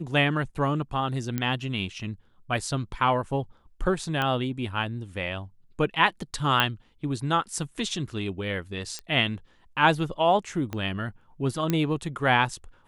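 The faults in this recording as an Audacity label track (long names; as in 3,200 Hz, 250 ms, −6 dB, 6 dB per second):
1.380000	1.380000	click −14 dBFS
4.220000	4.220000	click −14 dBFS
6.600000	6.600000	click −8 dBFS
8.990000	8.990000	click −20 dBFS
10.730000	10.730000	click −18 dBFS
11.700000	11.700000	click −11 dBFS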